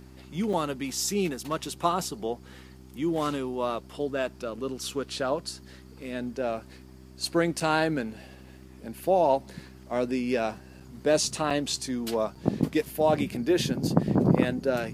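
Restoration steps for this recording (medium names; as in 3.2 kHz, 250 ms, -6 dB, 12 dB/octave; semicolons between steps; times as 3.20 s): de-hum 64.1 Hz, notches 6; interpolate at 0.53/7.60/10.80/11.50/12.35 s, 5.2 ms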